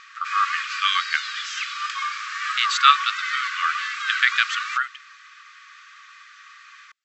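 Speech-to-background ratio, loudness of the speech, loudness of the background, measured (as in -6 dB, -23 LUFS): 4.5 dB, -22.5 LUFS, -27.0 LUFS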